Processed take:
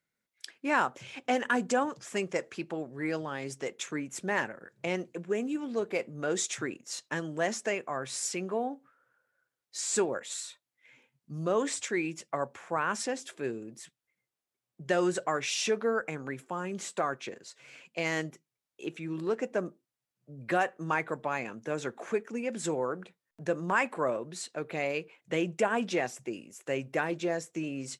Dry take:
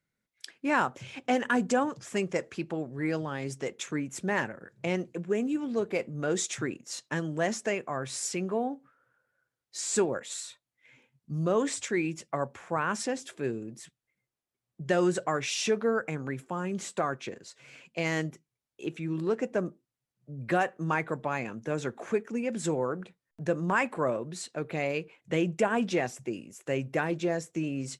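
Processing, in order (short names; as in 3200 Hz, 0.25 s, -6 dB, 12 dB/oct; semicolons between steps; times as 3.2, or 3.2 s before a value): low shelf 180 Hz -11 dB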